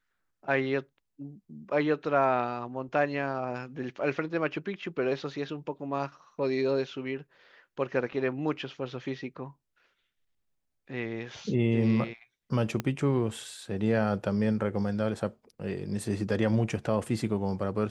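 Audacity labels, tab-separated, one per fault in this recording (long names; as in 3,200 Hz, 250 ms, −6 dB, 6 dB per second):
12.800000	12.800000	click −16 dBFS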